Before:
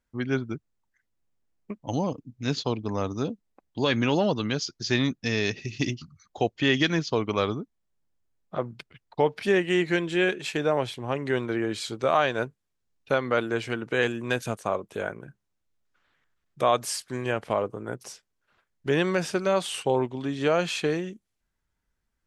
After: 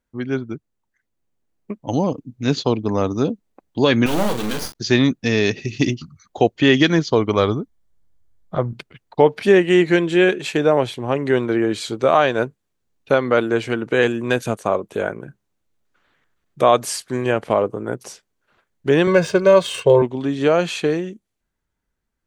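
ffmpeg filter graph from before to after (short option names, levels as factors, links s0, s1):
-filter_complex "[0:a]asettb=1/sr,asplit=3[s0][s1][s2];[s0]atrim=end=4.064[s3];[s1]atrim=start=4.06:end=4.75,asetpts=PTS-STARTPTS,afade=t=in:d=0.004:c=qsin,afade=t=out:st=0.686:d=0.004:c=qsin,acrusher=bits=3:dc=4:mix=0:aa=0.000001,asplit=2[s4][s5];[s5]adelay=42,volume=0.398[s6];[s4][s6]amix=inputs=2:normalize=0,atrim=end_sample=30429[s7];[s2]atrim=start=4.746[s8];[s3][s7]acrossfade=d=0.004:c1=hsin:c2=qsin[s9];[s9][s8]acrossfade=d=0.004:c1=qsin:c2=hsin,asettb=1/sr,asplit=3[s10][s11][s12];[s10]atrim=end=6.884[s13];[s11]atrim=start=6.88:end=8.73,asetpts=PTS-STARTPTS,afade=t=in:d=0.004:c=qsin,afade=t=out:st=1.846:d=0.004:c=qsin,bandreject=f=2600:w=7.9,asubboost=boost=8.5:cutoff=120[s14];[s12]atrim=start=8.726[s15];[s13][s14]acrossfade=d=0.004:c1=hsin:c2=qsin[s16];[s16][s15]acrossfade=d=0.004:c1=qsin:c2=hsin,asettb=1/sr,asplit=3[s17][s18][s19];[s17]atrim=end=19.074[s20];[s18]atrim=start=19.07:end=20.02,asetpts=PTS-STARTPTS,afade=t=in:d=0.004:c=qsin,afade=t=out:st=0.946:d=0.004:c=qsin,bass=f=250:g=3,treble=f=4000:g=1,aecho=1:1:1.9:0.82,atrim=end_sample=41895,adynamicsmooth=sensitivity=5:basefreq=5200[s21];[s19]atrim=start=20.016[s22];[s20][s21]acrossfade=d=0.004:c1=hsin:c2=qsin[s23];[s23][s22]acrossfade=d=0.004:c1=qsin:c2=hsin,equalizer=f=350:w=0.52:g=4.5,bandreject=f=5200:w=19,dynaudnorm=f=330:g=11:m=2.66"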